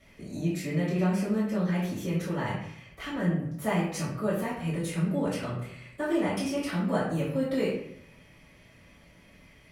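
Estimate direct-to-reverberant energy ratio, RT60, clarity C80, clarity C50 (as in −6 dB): −9.0 dB, 0.65 s, 6.0 dB, 2.5 dB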